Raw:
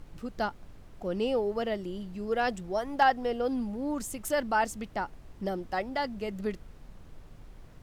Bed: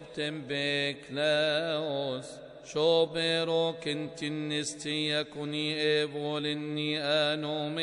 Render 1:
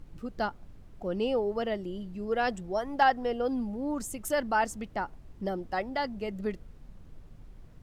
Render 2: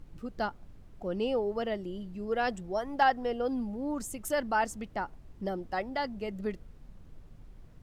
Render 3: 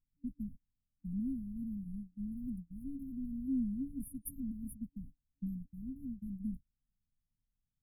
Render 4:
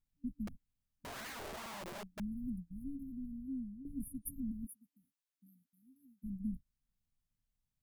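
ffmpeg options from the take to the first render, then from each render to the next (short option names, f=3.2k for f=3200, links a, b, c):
-af "afftdn=nr=6:nf=-51"
-af "volume=-1.5dB"
-af "agate=range=-36dB:threshold=-38dB:ratio=16:detection=peak,afftfilt=real='re*(1-between(b*sr/4096,280,9500))':imag='im*(1-between(b*sr/4096,280,9500))':win_size=4096:overlap=0.75"
-filter_complex "[0:a]asettb=1/sr,asplit=3[a][b][c];[a]atrim=end=0.474[d];[b]atrim=start=0.47:end=2.2,asetpts=PTS-STARTPTS,afade=t=in:d=0.004:c=qsin,afade=t=out:st=1.726:d=0.004:c=qsin,aeval=exprs='(mod(119*val(0)+1,2)-1)/119':c=same[e];[c]atrim=start=2.196[f];[d][e]acrossfade=d=0.004:c1=hsin:c2=qsin[g];[g][f]acrossfade=d=0.004:c1=qsin:c2=hsin,asplit=3[h][i][j];[h]afade=t=out:st=4.65:d=0.02[k];[i]highpass=850,afade=t=in:st=4.65:d=0.02,afade=t=out:st=6.23:d=0.02[l];[j]afade=t=in:st=6.23:d=0.02[m];[k][l][m]amix=inputs=3:normalize=0,asplit=2[n][o];[n]atrim=end=3.85,asetpts=PTS-STARTPTS,afade=t=out:st=2.79:d=1.06:silence=0.199526[p];[o]atrim=start=3.85,asetpts=PTS-STARTPTS,afade=t=in:d=0.004:c=hsin:silence=0.199526[q];[p][q]concat=n=2:v=0:a=1"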